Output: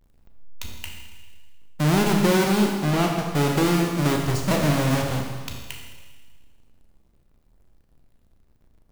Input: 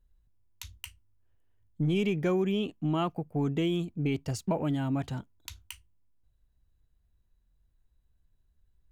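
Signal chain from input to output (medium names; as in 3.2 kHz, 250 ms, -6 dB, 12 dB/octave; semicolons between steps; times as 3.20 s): square wave that keeps the level; 2.77–3.25 s: treble shelf 5.1 kHz -6 dB; Schroeder reverb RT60 1.5 s, combs from 27 ms, DRR 1.5 dB; trim +2.5 dB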